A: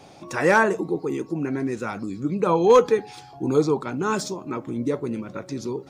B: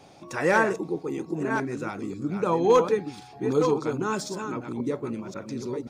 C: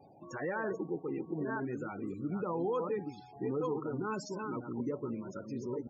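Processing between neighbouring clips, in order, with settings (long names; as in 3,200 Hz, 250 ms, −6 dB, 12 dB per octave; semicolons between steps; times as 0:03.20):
delay that plays each chunk backwards 534 ms, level −6.5 dB; level that may rise only so fast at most 570 dB per second; level −4 dB
brickwall limiter −20.5 dBFS, peak gain reduction 11.5 dB; spectral peaks only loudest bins 32; level −6 dB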